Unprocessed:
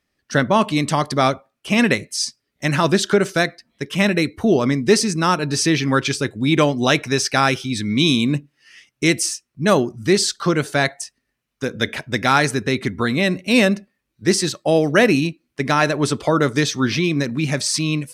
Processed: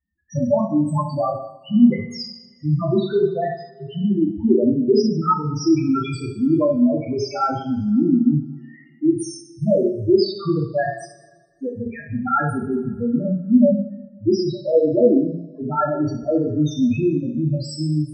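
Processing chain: loudest bins only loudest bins 2; two-slope reverb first 0.63 s, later 1.8 s, from -19 dB, DRR -1.5 dB

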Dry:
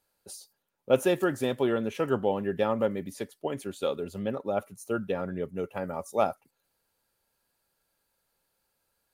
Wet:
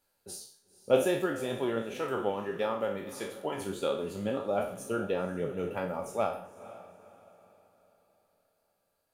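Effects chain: spectral trails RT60 0.52 s; 1.82–3.58 low shelf 410 Hz -8 dB; vocal rider within 3 dB 0.5 s; 4.9–5.31 crackle 270/s -55 dBFS; flange 1.5 Hz, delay 3.2 ms, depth 8.2 ms, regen +60%; diffused feedback echo 0.489 s, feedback 40%, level -16 dB

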